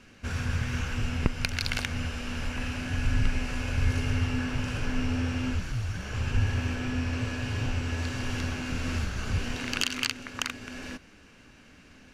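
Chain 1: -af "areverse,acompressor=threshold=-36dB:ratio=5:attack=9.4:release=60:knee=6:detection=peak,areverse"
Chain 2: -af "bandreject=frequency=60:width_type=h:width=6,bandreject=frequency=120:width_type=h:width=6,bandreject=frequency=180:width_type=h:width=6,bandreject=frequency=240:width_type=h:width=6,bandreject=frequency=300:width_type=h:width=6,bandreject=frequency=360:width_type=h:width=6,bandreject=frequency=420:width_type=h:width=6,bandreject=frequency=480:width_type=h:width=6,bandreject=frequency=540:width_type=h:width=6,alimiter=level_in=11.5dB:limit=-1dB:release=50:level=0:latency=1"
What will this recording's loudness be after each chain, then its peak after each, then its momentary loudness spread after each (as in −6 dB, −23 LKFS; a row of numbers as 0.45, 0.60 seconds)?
−38.5, −20.0 LKFS; −17.0, −1.0 dBFS; 4, 6 LU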